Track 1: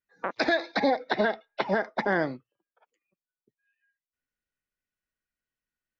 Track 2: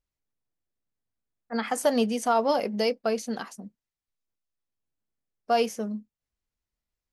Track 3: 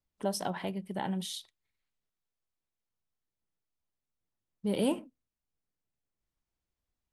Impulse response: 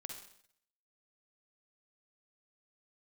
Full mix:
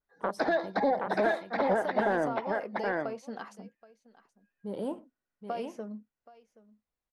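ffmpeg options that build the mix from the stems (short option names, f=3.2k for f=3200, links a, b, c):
-filter_complex "[0:a]volume=1dB,asplit=2[a][b];[b]volume=-7dB[c];[1:a]acompressor=threshold=-32dB:ratio=8,volume=-2.5dB,asplit=2[d][e];[e]volume=-20.5dB[f];[2:a]volume=-5dB,asplit=2[g][h];[h]volume=-7.5dB[i];[a][g]amix=inputs=2:normalize=0,equalizer=f=2.5k:w=1.7:g=-12.5,alimiter=limit=-18dB:level=0:latency=1,volume=0dB[j];[c][f][i]amix=inputs=3:normalize=0,aecho=0:1:775:1[k];[d][j][k]amix=inputs=3:normalize=0,asplit=2[l][m];[m]highpass=f=720:p=1,volume=10dB,asoftclip=type=tanh:threshold=-13.5dB[n];[l][n]amix=inputs=2:normalize=0,lowpass=f=1.1k:p=1,volume=-6dB,adynamicequalizer=threshold=0.002:dfrequency=4700:dqfactor=1.2:tfrequency=4700:tqfactor=1.2:attack=5:release=100:ratio=0.375:range=2:mode=cutabove:tftype=bell"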